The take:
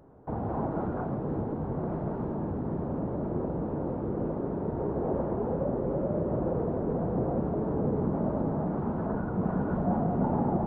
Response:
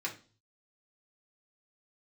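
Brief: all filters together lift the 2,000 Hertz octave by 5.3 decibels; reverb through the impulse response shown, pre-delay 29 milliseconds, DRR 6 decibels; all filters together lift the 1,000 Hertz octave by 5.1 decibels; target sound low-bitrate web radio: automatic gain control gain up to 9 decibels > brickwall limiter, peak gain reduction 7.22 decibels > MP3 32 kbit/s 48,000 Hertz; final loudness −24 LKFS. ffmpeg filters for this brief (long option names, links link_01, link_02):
-filter_complex "[0:a]equalizer=frequency=1000:width_type=o:gain=6,equalizer=frequency=2000:width_type=o:gain=4.5,asplit=2[link_01][link_02];[1:a]atrim=start_sample=2205,adelay=29[link_03];[link_02][link_03]afir=irnorm=-1:irlink=0,volume=-9dB[link_04];[link_01][link_04]amix=inputs=2:normalize=0,dynaudnorm=maxgain=9dB,alimiter=limit=-21.5dB:level=0:latency=1,volume=7.5dB" -ar 48000 -c:a libmp3lame -b:a 32k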